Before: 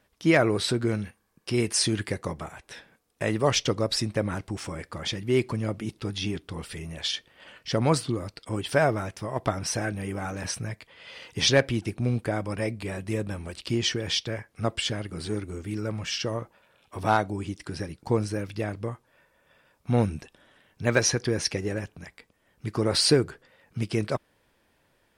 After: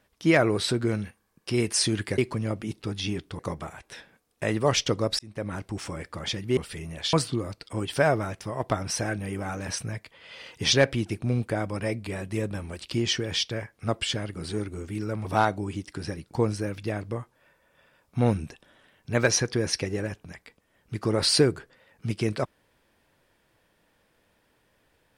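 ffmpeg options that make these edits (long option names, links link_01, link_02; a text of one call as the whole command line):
ffmpeg -i in.wav -filter_complex "[0:a]asplit=7[link_01][link_02][link_03][link_04][link_05][link_06][link_07];[link_01]atrim=end=2.182[link_08];[link_02]atrim=start=5.358:end=6.572[link_09];[link_03]atrim=start=2.178:end=3.98,asetpts=PTS-STARTPTS,afade=type=out:start_time=1.798:duration=0.004:curve=hsin[link_10];[link_04]atrim=start=3.98:end=5.362,asetpts=PTS-STARTPTS,afade=type=in:duration=0.68:curve=qsin[link_11];[link_05]atrim=start=6.568:end=7.132[link_12];[link_06]atrim=start=7.888:end=16.012[link_13];[link_07]atrim=start=16.968[link_14];[link_08][link_09]acrossfade=duration=0.004:curve1=hsin:curve2=hsin[link_15];[link_10][link_11]concat=n=2:v=0:a=1[link_16];[link_15][link_16]acrossfade=duration=0.004:curve1=hsin:curve2=hsin[link_17];[link_17][link_12]acrossfade=duration=0.004:curve1=hsin:curve2=hsin[link_18];[link_18][link_13]acrossfade=duration=0.004:curve1=hsin:curve2=hsin[link_19];[link_19][link_14]acrossfade=duration=0.004:curve1=hsin:curve2=hsin" out.wav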